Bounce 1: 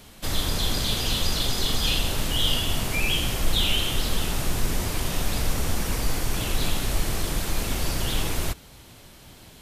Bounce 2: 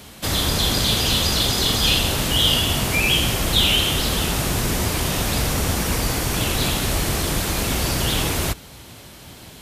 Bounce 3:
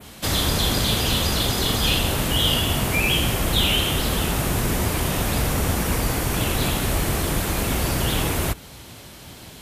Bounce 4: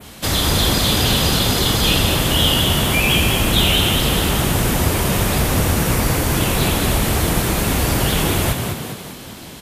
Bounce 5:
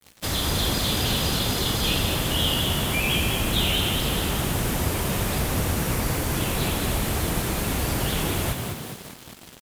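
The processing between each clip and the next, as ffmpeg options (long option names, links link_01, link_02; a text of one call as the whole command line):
ffmpeg -i in.wav -af "highpass=52,volume=7dB" out.wav
ffmpeg -i in.wav -af "adynamicequalizer=threshold=0.02:dfrequency=5000:dqfactor=0.84:tfrequency=5000:tqfactor=0.84:attack=5:release=100:ratio=0.375:range=3:mode=cutabove:tftype=bell" out.wav
ffmpeg -i in.wav -filter_complex "[0:a]asplit=8[link_01][link_02][link_03][link_04][link_05][link_06][link_07][link_08];[link_02]adelay=203,afreqshift=38,volume=-5.5dB[link_09];[link_03]adelay=406,afreqshift=76,volume=-10.9dB[link_10];[link_04]adelay=609,afreqshift=114,volume=-16.2dB[link_11];[link_05]adelay=812,afreqshift=152,volume=-21.6dB[link_12];[link_06]adelay=1015,afreqshift=190,volume=-26.9dB[link_13];[link_07]adelay=1218,afreqshift=228,volume=-32.3dB[link_14];[link_08]adelay=1421,afreqshift=266,volume=-37.6dB[link_15];[link_01][link_09][link_10][link_11][link_12][link_13][link_14][link_15]amix=inputs=8:normalize=0,volume=3.5dB" out.wav
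ffmpeg -i in.wav -af "acrusher=bits=4:mix=0:aa=0.5,volume=-7.5dB" out.wav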